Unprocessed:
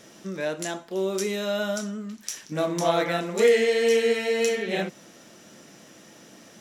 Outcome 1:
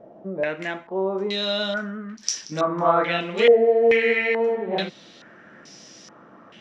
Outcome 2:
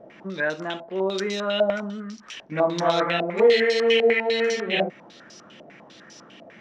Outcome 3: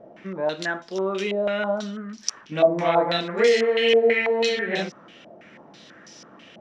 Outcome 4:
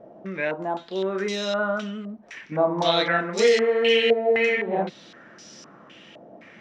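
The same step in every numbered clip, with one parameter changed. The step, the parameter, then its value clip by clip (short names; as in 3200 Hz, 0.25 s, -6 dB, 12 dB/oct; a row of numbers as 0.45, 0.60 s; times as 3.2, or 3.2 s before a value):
stepped low-pass, rate: 2.3, 10, 6.1, 3.9 Hz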